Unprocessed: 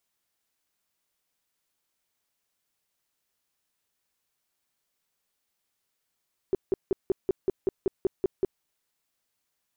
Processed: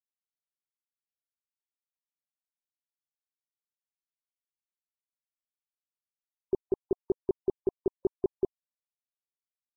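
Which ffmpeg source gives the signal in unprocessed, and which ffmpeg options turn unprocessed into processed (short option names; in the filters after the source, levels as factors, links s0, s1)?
-f lavfi -i "aevalsrc='0.106*sin(2*PI*382*mod(t,0.19))*lt(mod(t,0.19),7/382)':d=2.09:s=44100"
-af "afftfilt=real='re*gte(hypot(re,im),0.00891)':imag='im*gte(hypot(re,im),0.00891)':win_size=1024:overlap=0.75"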